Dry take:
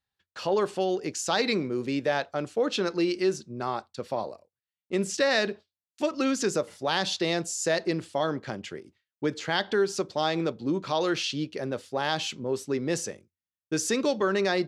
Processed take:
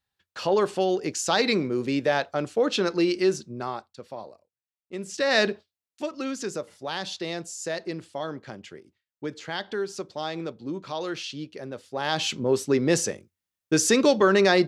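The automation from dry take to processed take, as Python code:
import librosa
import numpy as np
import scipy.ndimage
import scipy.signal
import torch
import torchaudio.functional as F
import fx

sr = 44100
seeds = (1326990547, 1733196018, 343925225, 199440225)

y = fx.gain(x, sr, db=fx.line((3.44, 3.0), (4.04, -7.5), (5.04, -7.5), (5.41, 5.0), (6.13, -5.0), (11.81, -5.0), (12.34, 6.5)))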